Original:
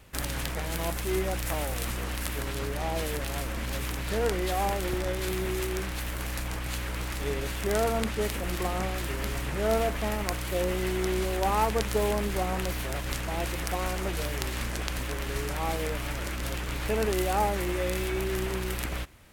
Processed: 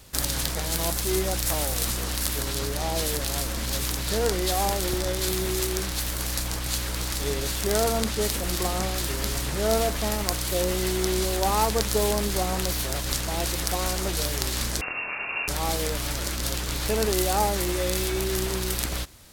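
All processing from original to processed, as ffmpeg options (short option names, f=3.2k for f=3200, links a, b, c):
-filter_complex "[0:a]asettb=1/sr,asplit=3[a][b][c];[a]atrim=end=14.814[d];[b]atrim=start=14.81:end=15.48,asetpts=PTS-STARTPTS,afade=t=in:d=0.004:c=qsin,afade=t=out:st=0.666:d=0.004:c=qsin,lowpass=f=2.4k:t=q:w=0.5098,lowpass=f=2.4k:t=q:w=0.6013,lowpass=f=2.4k:t=q:w=0.9,lowpass=f=2.4k:t=q:w=2.563,afreqshift=-2800,asplit=2[e][f];[f]adelay=25,volume=-4dB[g];[e][g]amix=inputs=2:normalize=0,atrim=end_sample=29547[h];[c]atrim=start=15.476[i];[d][h]acrossfade=d=0.004:c1=hsin:c2=qsin[j];[j][i]acrossfade=d=0.004:c1=qsin:c2=hsin,highshelf=f=3.3k:t=q:w=1.5:g=7.5,acontrast=84,volume=-4.5dB"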